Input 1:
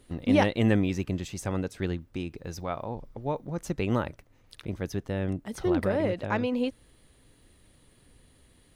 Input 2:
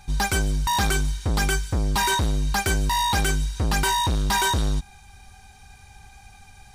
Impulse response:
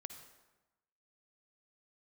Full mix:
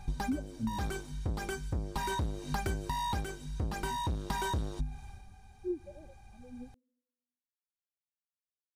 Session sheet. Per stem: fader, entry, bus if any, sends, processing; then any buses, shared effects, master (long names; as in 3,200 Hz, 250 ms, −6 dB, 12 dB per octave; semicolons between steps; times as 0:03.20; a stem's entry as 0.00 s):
−5.5 dB, 0.00 s, send −12.5 dB, every bin expanded away from the loudest bin 4 to 1
−2.5 dB, 0.00 s, no send, tilt shelving filter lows +6 dB; mains-hum notches 50/100/150/200/250 Hz; automatic ducking −8 dB, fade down 0.20 s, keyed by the first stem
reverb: on, RT60 1.1 s, pre-delay 48 ms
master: downward compressor 12 to 1, threshold −30 dBFS, peak gain reduction 13.5 dB